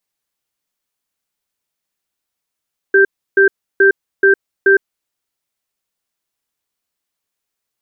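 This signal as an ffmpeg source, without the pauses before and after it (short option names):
-f lavfi -i "aevalsrc='0.355*(sin(2*PI*392*t)+sin(2*PI*1570*t))*clip(min(mod(t,0.43),0.11-mod(t,0.43))/0.005,0,1)':d=2.1:s=44100"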